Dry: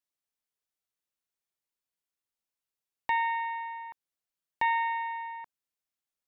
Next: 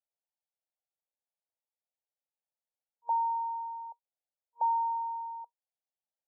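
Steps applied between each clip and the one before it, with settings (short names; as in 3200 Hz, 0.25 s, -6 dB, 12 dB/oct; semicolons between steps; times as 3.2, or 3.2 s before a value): FFT band-pass 470–940 Hz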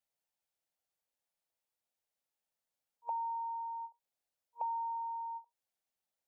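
compressor 2.5:1, threshold -46 dBFS, peak gain reduction 13.5 dB; ending taper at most 320 dB/s; gain +4 dB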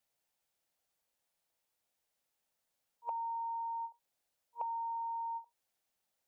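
compressor, threshold -43 dBFS, peak gain reduction 9 dB; gain +6 dB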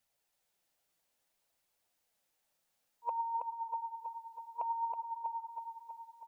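flange 0.61 Hz, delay 0.4 ms, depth 6.9 ms, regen +57%; feedback echo 0.323 s, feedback 58%, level -5 dB; gain +6.5 dB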